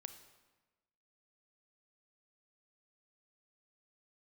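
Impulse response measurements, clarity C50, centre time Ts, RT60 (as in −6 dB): 10.5 dB, 13 ms, 1.2 s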